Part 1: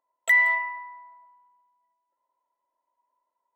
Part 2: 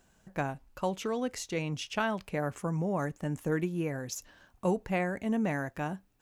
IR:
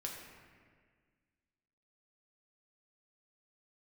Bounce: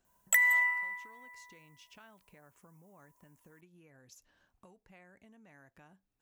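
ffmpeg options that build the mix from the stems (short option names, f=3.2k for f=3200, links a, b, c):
-filter_complex "[0:a]aexciter=amount=5.8:drive=6.3:freq=5.7k,adelay=50,volume=2dB,asplit=2[a][b];[b]volume=-13.5dB[c];[1:a]acompressor=threshold=-44dB:ratio=2.5,volume=-12.5dB[d];[2:a]atrim=start_sample=2205[e];[c][e]afir=irnorm=-1:irlink=0[f];[a][d][f]amix=inputs=3:normalize=0,acrossover=split=1000|2700[g][h][i];[g]acompressor=threshold=-59dB:ratio=4[j];[h]acompressor=threshold=-27dB:ratio=4[k];[i]acompressor=threshold=-30dB:ratio=4[l];[j][k][l]amix=inputs=3:normalize=0"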